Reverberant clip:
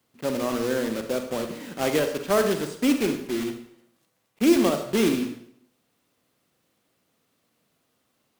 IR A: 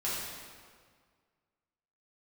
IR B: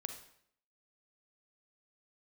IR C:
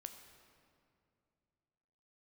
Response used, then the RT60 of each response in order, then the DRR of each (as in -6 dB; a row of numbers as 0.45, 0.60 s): B; 1.8, 0.65, 2.5 s; -9.5, 6.5, 6.0 dB